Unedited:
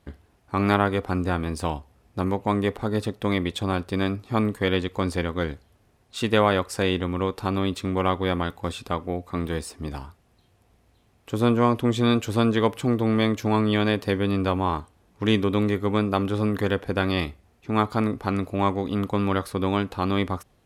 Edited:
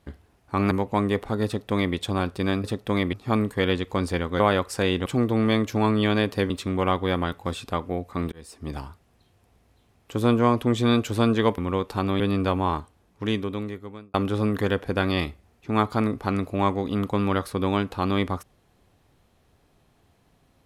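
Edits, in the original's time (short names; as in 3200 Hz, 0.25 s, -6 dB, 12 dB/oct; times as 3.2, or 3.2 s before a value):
0.71–2.24 cut
2.99–3.48 copy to 4.17
5.44–6.4 cut
7.06–7.68 swap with 12.76–14.2
9.5–9.9 fade in
14.74–16.14 fade out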